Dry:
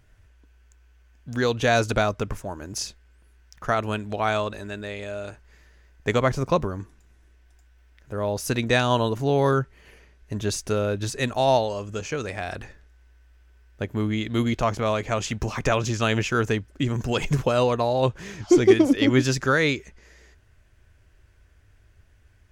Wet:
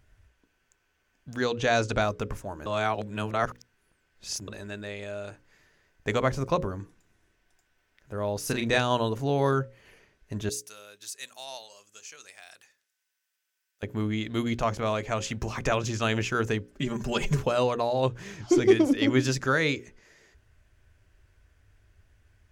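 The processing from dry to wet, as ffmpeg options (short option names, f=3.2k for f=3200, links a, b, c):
-filter_complex "[0:a]asettb=1/sr,asplit=3[a][b][c];[a]atrim=end=1.454[d];[b]atrim=start=1.45:end=2.02,asetpts=PTS-STARTPTS,afade=t=in:d=0.004:c=qsin,afade=t=out:st=0.566:d=0.004:c=qsin,lowpass=f=8.2k:w=0.5412,lowpass=f=8.2k:w=1.3066[e];[c]atrim=start=2.016[f];[d][e]acrossfade=d=0.004:c1=hsin:c2=qsin[g];[g][f]acrossfade=d=0.004:c1=qsin:c2=hsin,asettb=1/sr,asplit=3[h][i][j];[h]atrim=end=8.384[k];[i]atrim=start=8.38:end=8.78,asetpts=PTS-STARTPTS,afade=t=in:d=0.004:c=qsin,afade=t=out:st=0.396:d=0.004:c=qsin,asplit=2[l][m];[m]adelay=35,volume=-6dB[n];[l][n]amix=inputs=2:normalize=0,atrim=end_sample=17640[o];[j]atrim=start=8.776[p];[k][o]acrossfade=d=0.004:c1=hsin:c2=qsin[q];[q][p]acrossfade=d=0.004:c1=qsin:c2=hsin,asettb=1/sr,asplit=3[r][s][t];[r]atrim=end=10.494[u];[s]atrim=start=10.49:end=13.83,asetpts=PTS-STARTPTS,afade=t=in:d=0.004:c=qsin,afade=t=out:st=3.336:d=0.004:c=qsin,aderivative[v];[t]atrim=start=13.826[w];[u][v]acrossfade=d=0.004:c1=hsin:c2=qsin[x];[x][w]acrossfade=d=0.004:c1=qsin:c2=hsin,asettb=1/sr,asplit=3[y][z][aa];[y]atrim=end=16.724[ab];[z]atrim=start=16.72:end=17.4,asetpts=PTS-STARTPTS,afade=t=in:d=0.004:c=qsin,afade=t=out:st=0.676:d=0.004:c=qsin,aecho=1:1:5:0.65,atrim=end_sample=29988[ac];[aa]atrim=start=17.396[ad];[ab][ac]acrossfade=d=0.004:c1=hsin:c2=qsin[ae];[ae][ad]acrossfade=d=0.004:c1=qsin:c2=hsin,asplit=3[af][ag][ah];[af]atrim=end=2.662[ai];[ag]atrim=start=2.658:end=4.482,asetpts=PTS-STARTPTS,areverse[aj];[ah]atrim=start=4.478[ak];[ai][aj]acrossfade=d=0.004:c1=hsin:c2=hsin[al];[al][ak]acrossfade=d=0.004:c1=hsin:c2=hsin,bandreject=f=60:t=h:w=6,bandreject=f=120:t=h:w=6,bandreject=f=180:t=h:w=6,bandreject=f=240:t=h:w=6,bandreject=f=300:t=h:w=6,bandreject=f=360:t=h:w=6,bandreject=f=420:t=h:w=6,bandreject=f=480:t=h:w=6,bandreject=f=540:t=h:w=6,volume=-3.5dB"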